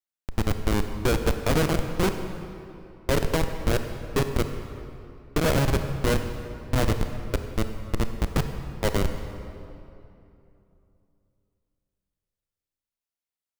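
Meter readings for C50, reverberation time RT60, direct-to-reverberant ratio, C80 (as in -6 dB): 7.5 dB, 2.8 s, 7.0 dB, 8.5 dB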